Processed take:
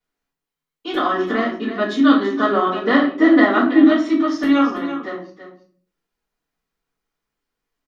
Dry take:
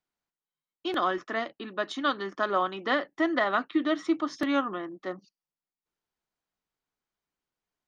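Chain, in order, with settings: 1.08–3.83 bell 260 Hz +10 dB 0.92 oct; echo 0.332 s -11 dB; shoebox room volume 40 m³, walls mixed, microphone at 1.9 m; gain -3.5 dB

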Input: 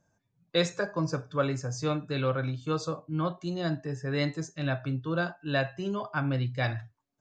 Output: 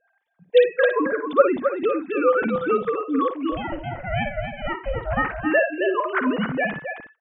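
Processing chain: sine-wave speech; 3.52–5.3 ring modulator 290 Hz; tapped delay 55/266/329 ms -9.5/-7.5/-17.5 dB; gain +7.5 dB

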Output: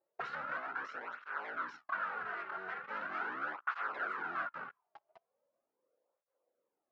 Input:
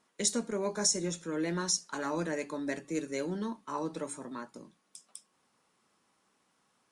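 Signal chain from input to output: cycle switcher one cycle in 3, inverted; resonant high shelf 4700 Hz -13.5 dB, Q 1.5; notch 3500 Hz, Q 5.4; sample leveller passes 5; 0.57–2.84 compressor, threshold -36 dBFS, peak gain reduction 13 dB; tube stage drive 35 dB, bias 0.25; auto-wah 520–1400 Hz, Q 6.6, up, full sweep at -39 dBFS; air absorption 190 m; tape flanging out of phase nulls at 0.4 Hz, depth 4.2 ms; gain +16 dB

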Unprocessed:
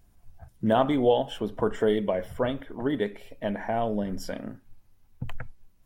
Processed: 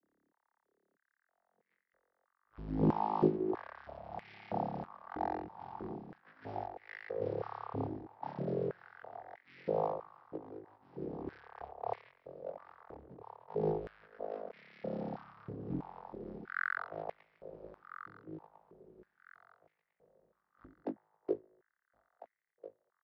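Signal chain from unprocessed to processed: arpeggiated vocoder major triad, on C#3, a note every 0.306 s; high shelf 2000 Hz +9.5 dB; sample leveller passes 1; feedback echo 0.343 s, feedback 38%, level -14 dB; wide varispeed 0.254×; stepped high-pass 3.1 Hz 300–2100 Hz; gain +1 dB

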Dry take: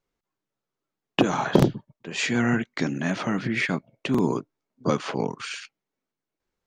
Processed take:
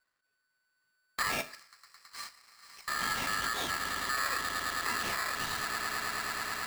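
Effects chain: soft clip -19.5 dBFS, distortion -9 dB; high shelf 3600 Hz -9.5 dB; swelling echo 0.108 s, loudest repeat 8, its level -15.5 dB; limiter -26.5 dBFS, peak gain reduction 10.5 dB; 1.41–2.88 rippled Chebyshev high-pass 2600 Hz, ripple 6 dB; on a send at -10 dB: reverb RT60 0.45 s, pre-delay 6 ms; on the sum: polarity switched at an audio rate 1500 Hz

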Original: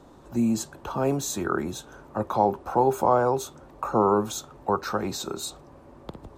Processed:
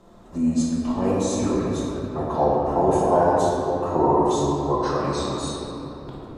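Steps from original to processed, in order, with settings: formant-preserving pitch shift -6 st; shoebox room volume 180 m³, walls hard, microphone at 0.86 m; gain -2.5 dB

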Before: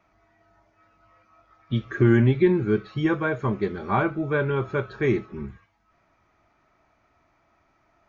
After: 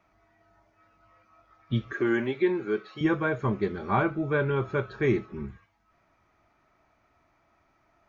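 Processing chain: 1.93–3.01 HPF 370 Hz 12 dB/oct; gain -2 dB

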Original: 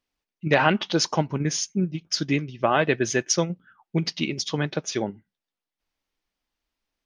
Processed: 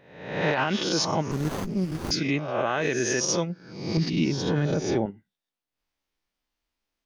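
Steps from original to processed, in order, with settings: spectral swells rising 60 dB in 0.75 s; 3.97–5.06 tilt -3 dB/oct; limiter -11.5 dBFS, peak gain reduction 8.5 dB; 1.31–2.11 running maximum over 17 samples; gain -3 dB

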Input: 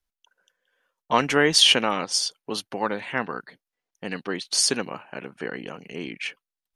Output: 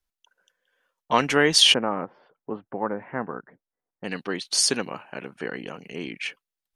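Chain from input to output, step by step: 1.74–4.04 Bessel low-pass 1100 Hz, order 6

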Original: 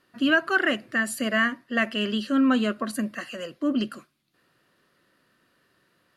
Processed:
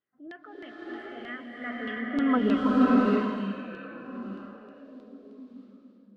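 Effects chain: Doppler pass-by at 2.31, 26 m/s, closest 6.1 m; high shelf 2300 Hz -11.5 dB; delay with a stepping band-pass 0.435 s, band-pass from 3000 Hz, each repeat -0.7 oct, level -11 dB; transient shaper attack -4 dB, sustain +4 dB; LFO low-pass saw down 3.2 Hz 340–4000 Hz; bloom reverb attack 0.64 s, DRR -5.5 dB; gain -4 dB

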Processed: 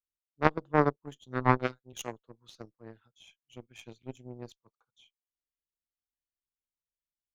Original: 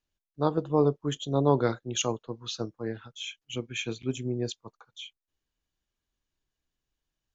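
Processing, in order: added harmonics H 2 -22 dB, 3 -10 dB, 8 -39 dB, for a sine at -9 dBFS; 1.26–1.93 robotiser 127 Hz; gain +5.5 dB

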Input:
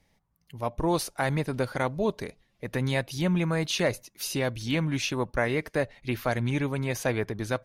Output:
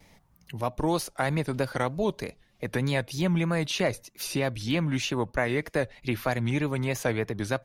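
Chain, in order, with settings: vibrato 3.2 Hz 93 cents; three-band squash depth 40%

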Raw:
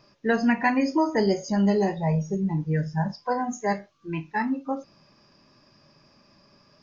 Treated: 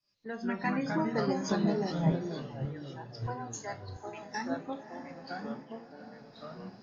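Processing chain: opening faded in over 0.70 s; diffused feedback echo 0.553 s, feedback 52%, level -13.5 dB; compressor 2.5:1, threshold -37 dBFS, peak gain reduction 13 dB; gate -45 dBFS, range -7 dB; upward compressor, threshold -40 dBFS; 2.11–4.22 HPF 480 Hz 12 dB/oct; echoes that change speed 0.137 s, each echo -3 st, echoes 3; three-band expander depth 100%

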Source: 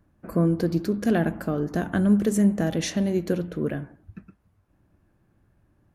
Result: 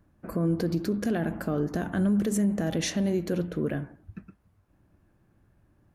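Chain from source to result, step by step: limiter -18.5 dBFS, peak gain reduction 7.5 dB

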